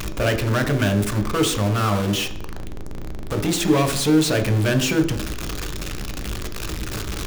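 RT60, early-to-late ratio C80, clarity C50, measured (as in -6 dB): 0.55 s, 12.5 dB, 10.0 dB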